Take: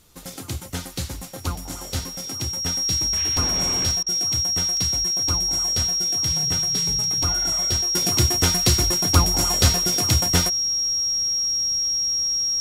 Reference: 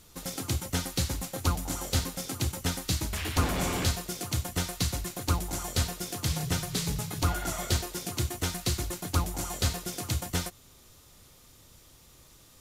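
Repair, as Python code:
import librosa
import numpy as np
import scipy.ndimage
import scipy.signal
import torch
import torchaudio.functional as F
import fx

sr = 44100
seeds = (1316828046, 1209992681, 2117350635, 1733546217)

y = fx.notch(x, sr, hz=5600.0, q=30.0)
y = fx.fix_interpolate(y, sr, at_s=(3.91, 4.77, 7.04, 8.42), length_ms=1.5)
y = fx.fix_interpolate(y, sr, at_s=(4.03,), length_ms=34.0)
y = fx.gain(y, sr, db=fx.steps((0.0, 0.0), (7.95, -10.0)))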